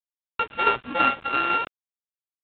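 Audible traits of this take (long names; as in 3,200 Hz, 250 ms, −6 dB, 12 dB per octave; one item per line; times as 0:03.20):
a buzz of ramps at a fixed pitch in blocks of 32 samples
tremolo saw down 6 Hz, depth 50%
a quantiser's noise floor 8 bits, dither none
mu-law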